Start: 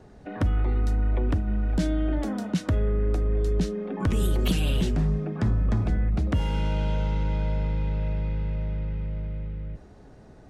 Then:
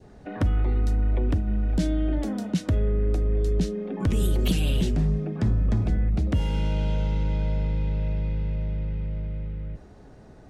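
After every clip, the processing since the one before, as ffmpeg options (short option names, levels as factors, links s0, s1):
-af "adynamicequalizer=threshold=0.00282:dfrequency=1200:dqfactor=0.98:tfrequency=1200:tqfactor=0.98:attack=5:release=100:ratio=0.375:range=3:mode=cutabove:tftype=bell,volume=1.12"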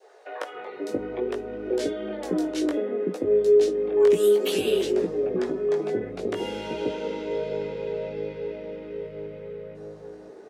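-filter_complex "[0:a]highpass=f=420:t=q:w=4.9,flanger=delay=15.5:depth=5.7:speed=0.61,acrossover=split=580[s0][s1];[s0]adelay=530[s2];[s2][s1]amix=inputs=2:normalize=0,volume=1.78"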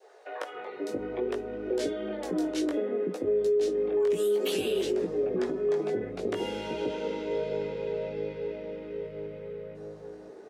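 -af "alimiter=limit=0.126:level=0:latency=1:release=78,volume=0.794"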